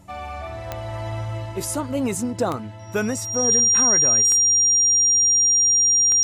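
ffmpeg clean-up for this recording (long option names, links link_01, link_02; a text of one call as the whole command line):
ffmpeg -i in.wav -af "adeclick=threshold=4,bandreject=frequency=95.3:width_type=h:width=4,bandreject=frequency=190.6:width_type=h:width=4,bandreject=frequency=285.9:width_type=h:width=4,bandreject=frequency=5700:width=30" out.wav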